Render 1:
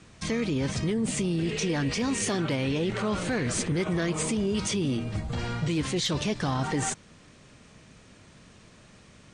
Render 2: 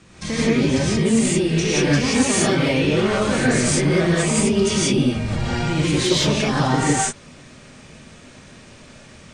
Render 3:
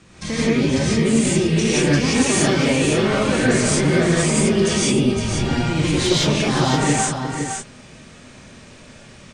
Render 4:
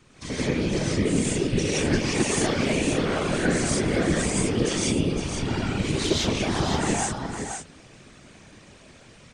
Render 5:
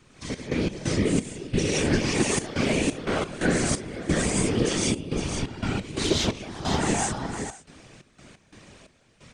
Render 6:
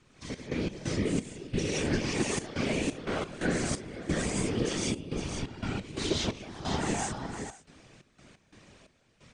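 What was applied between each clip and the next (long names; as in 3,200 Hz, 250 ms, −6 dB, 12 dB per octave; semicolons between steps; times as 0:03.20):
reverb whose tail is shaped and stops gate 200 ms rising, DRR −7.5 dB; level +2 dB
single-tap delay 511 ms −6.5 dB
random phases in short frames; level −6.5 dB
gate pattern "xx.x.xx..xxxxx." 88 BPM −12 dB
low-pass filter 8,800 Hz 12 dB per octave; level −6 dB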